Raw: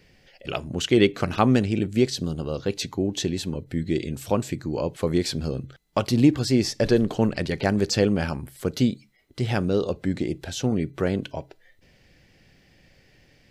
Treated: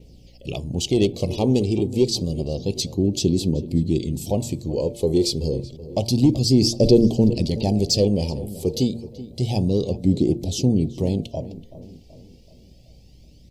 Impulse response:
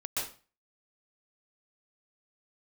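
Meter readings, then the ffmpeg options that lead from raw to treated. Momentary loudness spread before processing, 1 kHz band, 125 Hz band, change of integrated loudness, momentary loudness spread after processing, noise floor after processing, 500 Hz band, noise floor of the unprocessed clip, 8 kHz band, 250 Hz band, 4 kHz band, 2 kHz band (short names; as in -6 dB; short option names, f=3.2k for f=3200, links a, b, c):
11 LU, -6.0 dB, +4.5 dB, +3.0 dB, 11 LU, -49 dBFS, +2.5 dB, -59 dBFS, +4.5 dB, +3.0 dB, +4.0 dB, under -10 dB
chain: -filter_complex "[0:a]bandreject=f=115.8:t=h:w=4,bandreject=f=231.6:t=h:w=4,bandreject=f=347.4:t=h:w=4,bandreject=f=463.2:t=h:w=4,bandreject=f=579:t=h:w=4,bandreject=f=694.8:t=h:w=4,bandreject=f=810.6:t=h:w=4,bandreject=f=926.4:t=h:w=4,bandreject=f=1.0422k:t=h:w=4,bandreject=f=1.158k:t=h:w=4,adynamicequalizer=threshold=0.00355:dfrequency=4800:dqfactor=7:tfrequency=4800:tqfactor=7:attack=5:release=100:ratio=0.375:range=3:mode=boostabove:tftype=bell,asoftclip=type=tanh:threshold=-11dB,aeval=exprs='val(0)+0.00126*(sin(2*PI*60*n/s)+sin(2*PI*2*60*n/s)/2+sin(2*PI*3*60*n/s)/3+sin(2*PI*4*60*n/s)/4+sin(2*PI*5*60*n/s)/5)':c=same,aphaser=in_gain=1:out_gain=1:delay=2.6:decay=0.43:speed=0.29:type=triangular,asuperstop=centerf=1500:order=4:qfactor=0.5,asplit=2[a][b];[b]adelay=379,lowpass=f=2.2k:p=1,volume=-15.5dB,asplit=2[c][d];[d]adelay=379,lowpass=f=2.2k:p=1,volume=0.51,asplit=2[e][f];[f]adelay=379,lowpass=f=2.2k:p=1,volume=0.51,asplit=2[g][h];[h]adelay=379,lowpass=f=2.2k:p=1,volume=0.51,asplit=2[i][j];[j]adelay=379,lowpass=f=2.2k:p=1,volume=0.51[k];[c][e][g][i][k]amix=inputs=5:normalize=0[l];[a][l]amix=inputs=2:normalize=0,volume=4dB"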